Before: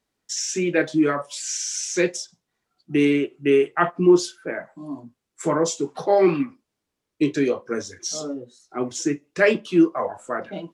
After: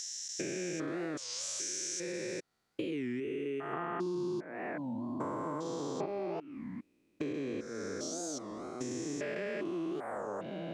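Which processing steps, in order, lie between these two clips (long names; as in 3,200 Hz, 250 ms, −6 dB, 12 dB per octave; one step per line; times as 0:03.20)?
spectrum averaged block by block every 400 ms
0:03.73–0:06.06: octave-band graphic EQ 125/250/1,000/4,000/8,000 Hz +4/+7/+9/+4/−5 dB
downward compressor 6 to 1, threshold −35 dBFS, peak gain reduction 18 dB
wow of a warped record 33 1/3 rpm, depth 250 cents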